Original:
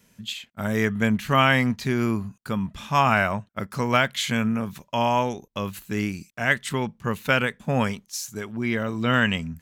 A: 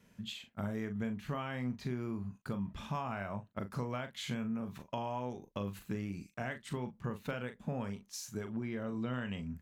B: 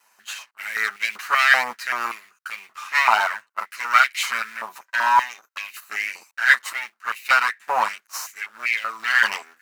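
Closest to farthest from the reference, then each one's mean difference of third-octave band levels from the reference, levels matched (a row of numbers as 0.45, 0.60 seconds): A, B; 5.0, 13.0 decibels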